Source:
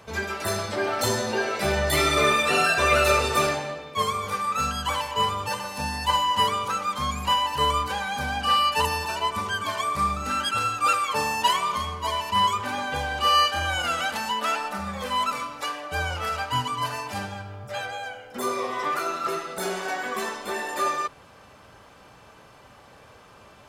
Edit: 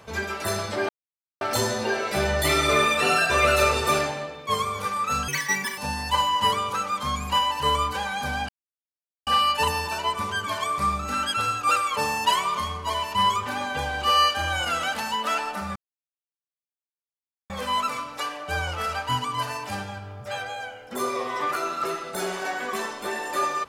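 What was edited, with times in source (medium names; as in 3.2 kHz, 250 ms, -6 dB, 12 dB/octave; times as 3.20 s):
0.89 s: insert silence 0.52 s
4.76–5.73 s: speed 195%
8.44 s: insert silence 0.78 s
14.93 s: insert silence 1.74 s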